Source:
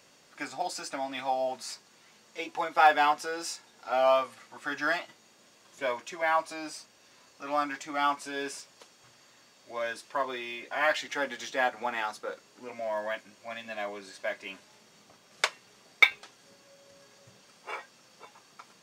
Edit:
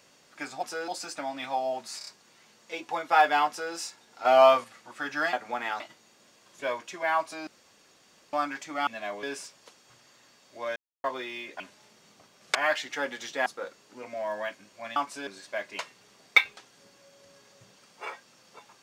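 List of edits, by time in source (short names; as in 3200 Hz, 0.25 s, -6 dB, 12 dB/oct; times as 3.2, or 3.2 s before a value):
1.73 stutter 0.03 s, 4 plays
3.15–3.4 copy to 0.63
3.91–4.3 gain +6 dB
6.66–7.52 room tone
8.06–8.37 swap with 13.62–13.98
9.9–10.18 mute
11.65–12.12 move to 4.99
14.5–15.45 move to 10.74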